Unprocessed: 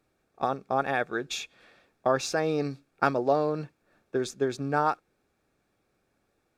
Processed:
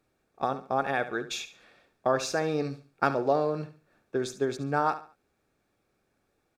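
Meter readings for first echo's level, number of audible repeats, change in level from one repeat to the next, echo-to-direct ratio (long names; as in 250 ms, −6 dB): −13.0 dB, 3, −10.0 dB, −12.5 dB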